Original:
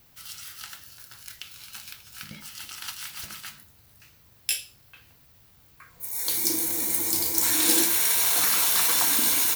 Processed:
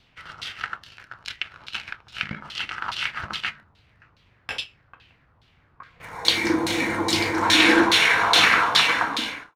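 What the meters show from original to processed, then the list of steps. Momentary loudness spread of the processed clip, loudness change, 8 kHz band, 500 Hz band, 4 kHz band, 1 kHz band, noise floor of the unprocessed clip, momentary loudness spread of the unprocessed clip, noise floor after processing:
20 LU, +0.5 dB, −10.0 dB, +11.0 dB, +8.0 dB, +12.5 dB, −57 dBFS, 21 LU, −61 dBFS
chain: fade-out on the ending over 1.18 s
leveller curve on the samples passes 2
auto-filter low-pass saw down 2.4 Hz 980–3,900 Hz
level +4 dB

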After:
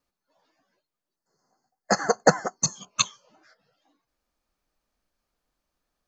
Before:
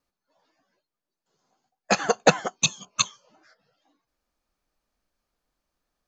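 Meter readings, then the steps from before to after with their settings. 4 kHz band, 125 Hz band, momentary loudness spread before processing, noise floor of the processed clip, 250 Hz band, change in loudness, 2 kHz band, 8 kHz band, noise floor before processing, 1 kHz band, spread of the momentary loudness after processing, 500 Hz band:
−3.0 dB, 0.0 dB, 6 LU, below −85 dBFS, 0.0 dB, −1.0 dB, −2.0 dB, can't be measured, below −85 dBFS, 0.0 dB, 6 LU, 0.0 dB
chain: gain on a spectral selection 0:01.17–0:02.76, 2,100–4,200 Hz −24 dB

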